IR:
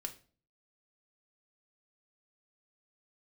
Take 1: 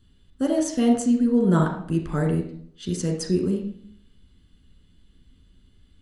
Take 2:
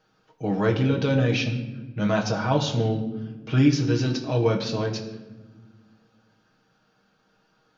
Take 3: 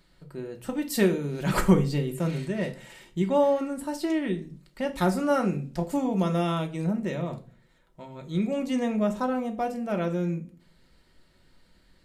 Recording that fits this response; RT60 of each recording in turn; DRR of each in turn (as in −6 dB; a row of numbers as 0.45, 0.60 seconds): 3; 0.60, 1.2, 0.40 seconds; 0.5, 0.0, 3.0 decibels